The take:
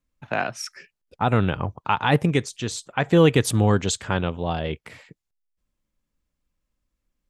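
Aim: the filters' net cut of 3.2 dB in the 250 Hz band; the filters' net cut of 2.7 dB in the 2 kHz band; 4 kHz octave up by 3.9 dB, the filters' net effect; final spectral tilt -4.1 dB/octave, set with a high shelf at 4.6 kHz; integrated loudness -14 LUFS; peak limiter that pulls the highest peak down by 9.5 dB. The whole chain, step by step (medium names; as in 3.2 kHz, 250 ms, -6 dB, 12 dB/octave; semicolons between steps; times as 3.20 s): peaking EQ 250 Hz -5 dB; peaking EQ 2 kHz -6 dB; peaking EQ 4 kHz +3 dB; treble shelf 4.6 kHz +8 dB; trim +14 dB; peak limiter -1.5 dBFS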